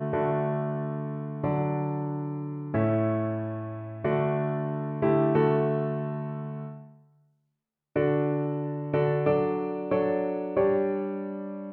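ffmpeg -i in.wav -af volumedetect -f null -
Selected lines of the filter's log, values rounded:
mean_volume: -27.8 dB
max_volume: -11.3 dB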